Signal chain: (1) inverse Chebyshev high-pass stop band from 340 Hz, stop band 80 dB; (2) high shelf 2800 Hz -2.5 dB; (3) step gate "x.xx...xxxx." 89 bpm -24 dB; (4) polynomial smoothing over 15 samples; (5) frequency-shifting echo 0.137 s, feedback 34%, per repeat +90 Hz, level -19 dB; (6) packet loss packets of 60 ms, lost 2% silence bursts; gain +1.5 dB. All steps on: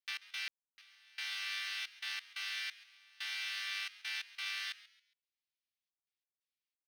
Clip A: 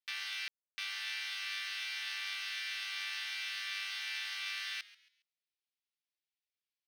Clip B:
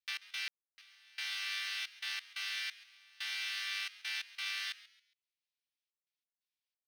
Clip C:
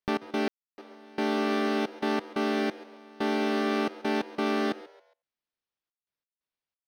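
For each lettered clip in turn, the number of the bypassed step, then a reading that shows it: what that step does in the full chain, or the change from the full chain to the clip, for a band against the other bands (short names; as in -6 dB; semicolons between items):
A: 3, crest factor change -2.5 dB; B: 2, loudness change +1.5 LU; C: 1, 1 kHz band +23.5 dB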